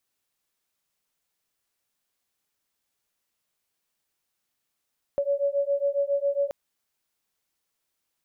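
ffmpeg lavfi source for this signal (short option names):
-f lavfi -i "aevalsrc='0.0531*(sin(2*PI*560*t)+sin(2*PI*567.3*t))':d=1.33:s=44100"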